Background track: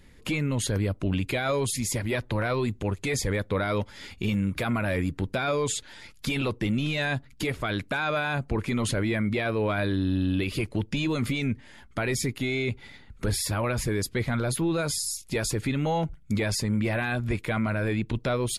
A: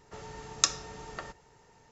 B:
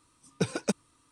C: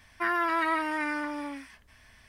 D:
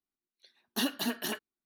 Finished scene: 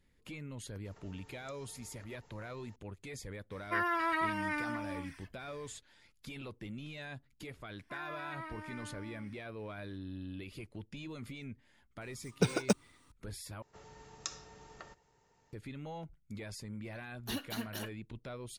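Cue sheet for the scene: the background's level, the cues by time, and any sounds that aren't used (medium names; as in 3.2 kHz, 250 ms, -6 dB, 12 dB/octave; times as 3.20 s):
background track -18 dB
0.85 s: add A -4 dB + compression 10:1, threshold -53 dBFS
3.51 s: add C -4 dB + reverb removal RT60 0.52 s
7.70 s: add C -17.5 dB
12.01 s: add B + median filter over 3 samples
13.62 s: replace with A -10.5 dB + peak limiter -8.5 dBFS
16.51 s: add D -8.5 dB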